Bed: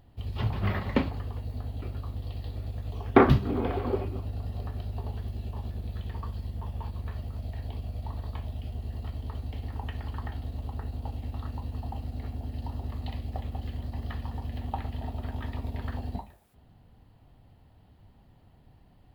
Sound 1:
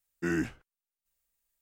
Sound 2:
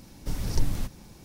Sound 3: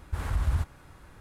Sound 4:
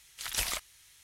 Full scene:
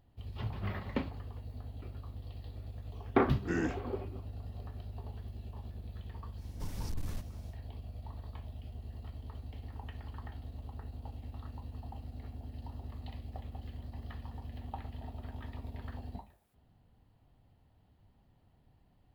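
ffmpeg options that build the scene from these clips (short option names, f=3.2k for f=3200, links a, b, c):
-filter_complex "[0:a]volume=-9dB[a];[1:a]aresample=16000,aresample=44100[b];[2:a]asoftclip=type=hard:threshold=-22dB[c];[b]atrim=end=1.61,asetpts=PTS-STARTPTS,volume=-4.5dB,afade=t=in:d=0.004:c=hsin,afade=t=out:st=1.606:d=0.004:c=hsin,adelay=143325S[d];[c]atrim=end=1.24,asetpts=PTS-STARTPTS,volume=-9.5dB,afade=t=in:d=0.1,afade=t=out:st=1.14:d=0.1,adelay=279594S[e];[a][d][e]amix=inputs=3:normalize=0"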